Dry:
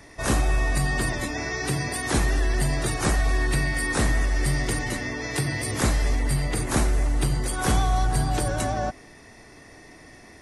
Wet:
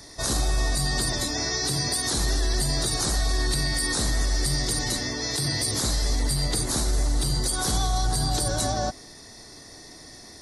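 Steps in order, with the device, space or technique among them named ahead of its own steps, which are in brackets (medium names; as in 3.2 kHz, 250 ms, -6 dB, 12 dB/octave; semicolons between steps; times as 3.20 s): over-bright horn tweeter (resonant high shelf 3.3 kHz +7.5 dB, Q 3; peak limiter -15.5 dBFS, peak gain reduction 9 dB)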